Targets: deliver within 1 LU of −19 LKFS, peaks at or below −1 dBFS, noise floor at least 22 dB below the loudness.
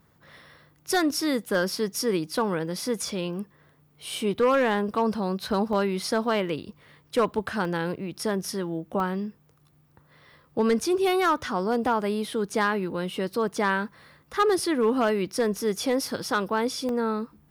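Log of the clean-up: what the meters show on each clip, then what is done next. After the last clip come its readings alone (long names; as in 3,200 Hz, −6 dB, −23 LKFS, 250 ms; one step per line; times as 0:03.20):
share of clipped samples 0.6%; peaks flattened at −15.5 dBFS; number of dropouts 6; longest dropout 1.1 ms; integrated loudness −26.5 LKFS; sample peak −15.5 dBFS; target loudness −19.0 LKFS
→ clipped peaks rebuilt −15.5 dBFS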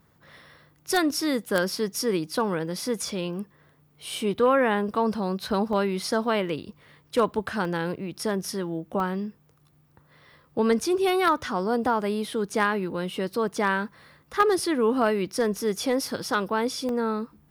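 share of clipped samples 0.0%; number of dropouts 6; longest dropout 1.1 ms
→ repair the gap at 0:03.07/0:05.73/0:07.65/0:09.00/0:16.25/0:16.89, 1.1 ms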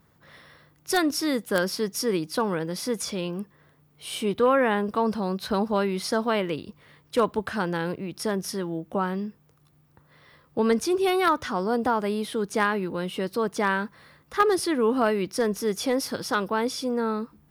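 number of dropouts 0; integrated loudness −26.0 LKFS; sample peak −6.5 dBFS; target loudness −19.0 LKFS
→ level +7 dB
brickwall limiter −1 dBFS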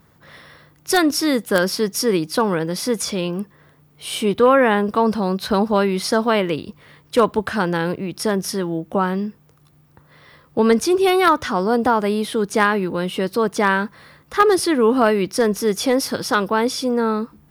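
integrated loudness −19.0 LKFS; sample peak −1.0 dBFS; background noise floor −54 dBFS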